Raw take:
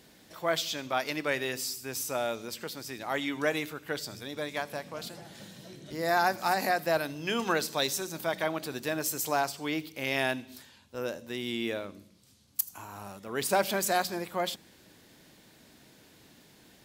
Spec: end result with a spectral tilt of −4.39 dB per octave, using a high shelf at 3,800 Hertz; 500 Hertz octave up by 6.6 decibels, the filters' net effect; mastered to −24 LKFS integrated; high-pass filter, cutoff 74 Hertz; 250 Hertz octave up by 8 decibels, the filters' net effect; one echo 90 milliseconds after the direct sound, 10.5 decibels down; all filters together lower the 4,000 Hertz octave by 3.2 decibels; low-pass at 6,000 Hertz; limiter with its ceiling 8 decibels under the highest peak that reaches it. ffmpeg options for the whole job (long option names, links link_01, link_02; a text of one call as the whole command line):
ffmpeg -i in.wav -af "highpass=74,lowpass=6000,equalizer=frequency=250:width_type=o:gain=8,equalizer=frequency=500:width_type=o:gain=6.5,highshelf=frequency=3800:gain=7.5,equalizer=frequency=4000:width_type=o:gain=-8,alimiter=limit=-16dB:level=0:latency=1,aecho=1:1:90:0.299,volume=4.5dB" out.wav